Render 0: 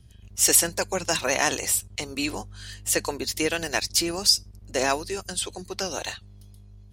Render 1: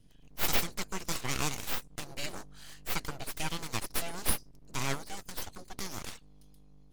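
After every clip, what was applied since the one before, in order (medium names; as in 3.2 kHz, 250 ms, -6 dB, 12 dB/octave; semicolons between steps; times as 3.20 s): full-wave rectifier; trim -7 dB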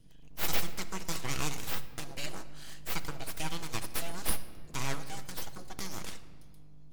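in parallel at -2 dB: compression, threshold -39 dBFS, peak gain reduction 17.5 dB; on the sum: reverberation RT60 1.7 s, pre-delay 6 ms, DRR 10 dB; trim -4 dB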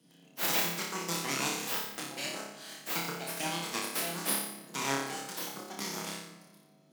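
steep high-pass 170 Hz 36 dB/octave; on a send: flutter echo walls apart 5 m, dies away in 0.68 s; on the sum: trim +1 dB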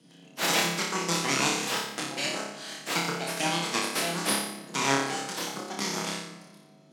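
low-pass 8.7 kHz 12 dB/octave; trim +7 dB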